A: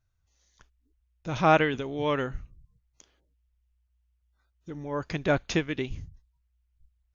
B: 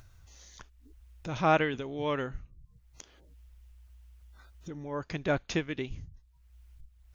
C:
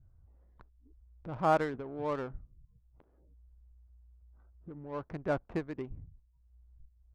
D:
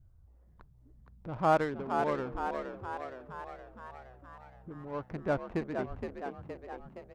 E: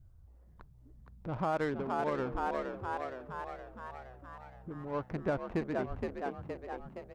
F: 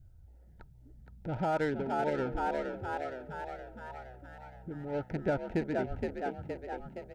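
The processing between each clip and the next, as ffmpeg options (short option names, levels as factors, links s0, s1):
-af "acompressor=mode=upward:threshold=0.0224:ratio=2.5,volume=0.631"
-af "lowpass=1500,adynamicsmooth=sensitivity=6.5:basefreq=730,adynamicequalizer=threshold=0.00891:dfrequency=900:dqfactor=0.81:tfrequency=900:tqfactor=0.81:attack=5:release=100:ratio=0.375:range=2:mode=boostabove:tftype=bell,volume=0.596"
-filter_complex "[0:a]asplit=9[s0][s1][s2][s3][s4][s5][s6][s7][s8];[s1]adelay=468,afreqshift=63,volume=0.501[s9];[s2]adelay=936,afreqshift=126,volume=0.302[s10];[s3]adelay=1404,afreqshift=189,volume=0.18[s11];[s4]adelay=1872,afreqshift=252,volume=0.108[s12];[s5]adelay=2340,afreqshift=315,volume=0.0653[s13];[s6]adelay=2808,afreqshift=378,volume=0.0389[s14];[s7]adelay=3276,afreqshift=441,volume=0.0234[s15];[s8]adelay=3744,afreqshift=504,volume=0.014[s16];[s0][s9][s10][s11][s12][s13][s14][s15][s16]amix=inputs=9:normalize=0,volume=1.12"
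-af "alimiter=level_in=1.06:limit=0.0631:level=0:latency=1:release=130,volume=0.944,volume=1.26"
-af "asuperstop=centerf=1100:order=20:qfactor=3.7,volume=1.26"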